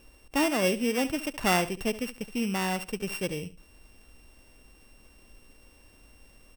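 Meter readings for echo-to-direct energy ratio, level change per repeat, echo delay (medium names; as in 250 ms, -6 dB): -15.0 dB, -13.0 dB, 71 ms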